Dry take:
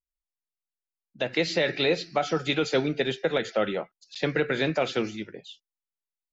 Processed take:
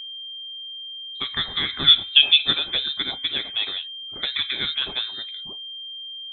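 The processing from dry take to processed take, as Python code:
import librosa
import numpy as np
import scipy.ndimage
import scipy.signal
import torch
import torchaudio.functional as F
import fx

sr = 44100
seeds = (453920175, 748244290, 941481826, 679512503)

y = fx.spec_box(x, sr, start_s=1.87, length_s=0.7, low_hz=290.0, high_hz=1600.0, gain_db=12)
y = y + 10.0 ** (-32.0 / 20.0) * np.sin(2.0 * np.pi * 720.0 * np.arange(len(y)) / sr)
y = fx.freq_invert(y, sr, carrier_hz=3900)
y = y * librosa.db_to_amplitude(-1.0)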